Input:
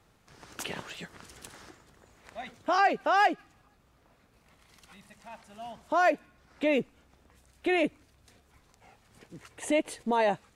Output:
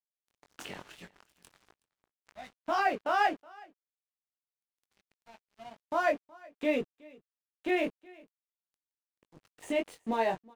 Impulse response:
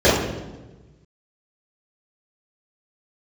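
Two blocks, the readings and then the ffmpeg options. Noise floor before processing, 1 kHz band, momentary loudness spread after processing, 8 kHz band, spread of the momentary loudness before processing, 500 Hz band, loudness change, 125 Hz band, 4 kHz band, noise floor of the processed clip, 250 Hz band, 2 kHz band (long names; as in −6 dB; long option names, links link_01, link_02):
−65 dBFS, −4.0 dB, 22 LU, can't be measured, 22 LU, −3.5 dB, −3.5 dB, −6.0 dB, −5.0 dB, below −85 dBFS, −3.5 dB, −4.0 dB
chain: -filter_complex "[0:a]highshelf=frequency=6900:gain=-6.5,flanger=delay=19.5:depth=2.6:speed=0.44,aeval=exprs='sgn(val(0))*max(abs(val(0))-0.00335,0)':channel_layout=same,asplit=2[link_01][link_02];[link_02]aecho=0:1:370:0.0631[link_03];[link_01][link_03]amix=inputs=2:normalize=0"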